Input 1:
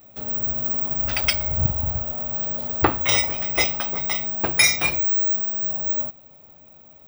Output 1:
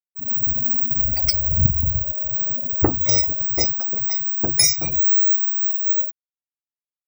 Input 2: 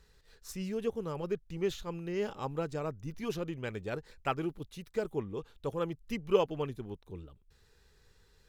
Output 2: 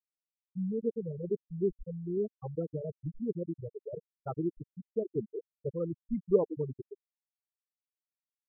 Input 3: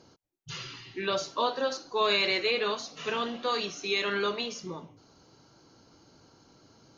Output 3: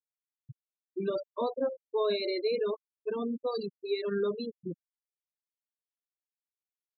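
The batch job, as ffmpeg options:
-af "afftfilt=real='re*gte(hypot(re,im),0.0891)':imag='im*gte(hypot(re,im),0.0891)':win_size=1024:overlap=0.75,firequalizer=gain_entry='entry(250,0);entry(1200,-16);entry(1800,-14);entry(3000,-24);entry(5000,0)':delay=0.05:min_phase=1,volume=4.5dB"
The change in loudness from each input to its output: +3.0, +0.5, -3.5 LU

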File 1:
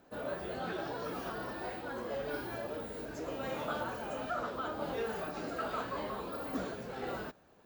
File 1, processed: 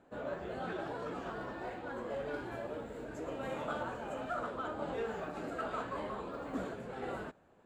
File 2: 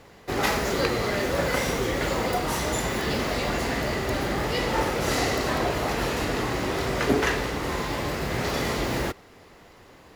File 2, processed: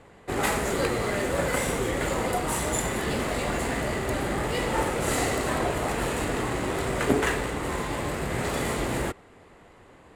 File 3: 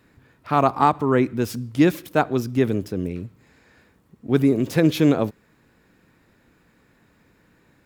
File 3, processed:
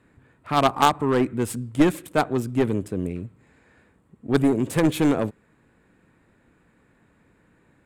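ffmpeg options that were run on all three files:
-af "highshelf=f=6.8k:t=q:w=3:g=7.5,adynamicsmooth=sensitivity=8:basefreq=4.8k,aeval=exprs='0.708*(cos(1*acos(clip(val(0)/0.708,-1,1)))-cos(1*PI/2))+0.0794*(cos(4*acos(clip(val(0)/0.708,-1,1)))-cos(4*PI/2))+0.251*(cos(6*acos(clip(val(0)/0.708,-1,1)))-cos(6*PI/2))+0.141*(cos(8*acos(clip(val(0)/0.708,-1,1)))-cos(8*PI/2))':c=same,volume=-1dB"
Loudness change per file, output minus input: -1.5, -1.5, -1.5 LU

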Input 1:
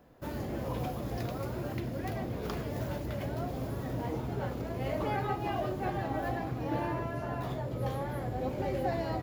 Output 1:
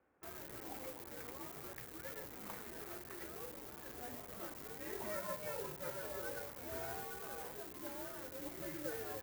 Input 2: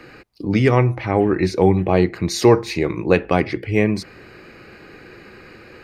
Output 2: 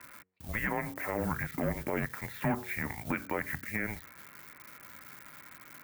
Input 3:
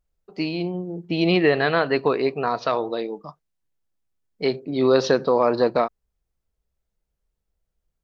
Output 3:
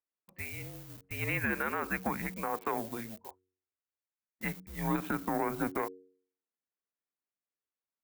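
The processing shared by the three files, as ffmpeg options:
-filter_complex "[0:a]aeval=exprs='0.891*(cos(1*acos(clip(val(0)/0.891,-1,1)))-cos(1*PI/2))+0.0501*(cos(7*acos(clip(val(0)/0.891,-1,1)))-cos(7*PI/2))':c=same,highpass=f=220:t=q:w=0.5412,highpass=f=220:t=q:w=1.307,lowpass=f=2.5k:t=q:w=0.5176,lowpass=f=2.5k:t=q:w=0.7071,lowpass=f=2.5k:t=q:w=1.932,afreqshift=-220,asplit=2[a][b];[b]acrusher=bits=6:mix=0:aa=0.000001,volume=-10.5dB[c];[a][c]amix=inputs=2:normalize=0,aemphasis=mode=production:type=riaa,bandreject=f=92.59:t=h:w=4,bandreject=f=185.18:t=h:w=4,bandreject=f=277.77:t=h:w=4,bandreject=f=370.36:t=h:w=4,bandreject=f=462.95:t=h:w=4,alimiter=limit=-15.5dB:level=0:latency=1:release=89,equalizer=f=71:w=2.6:g=6.5,volume=-5.5dB"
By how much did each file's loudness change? -10.0, -16.5, -13.0 LU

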